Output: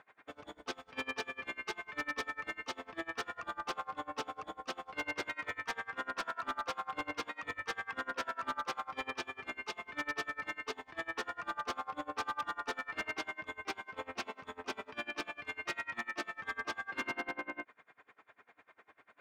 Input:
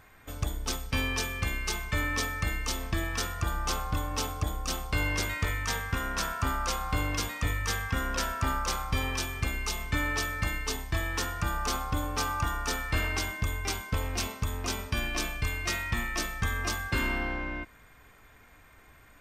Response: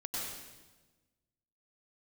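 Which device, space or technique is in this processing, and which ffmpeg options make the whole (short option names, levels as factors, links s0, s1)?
helicopter radio: -af "highpass=360,lowpass=2500,aeval=exprs='val(0)*pow(10,-27*(0.5-0.5*cos(2*PI*10*n/s))/20)':c=same,asoftclip=type=hard:threshold=0.0224,volume=1.33"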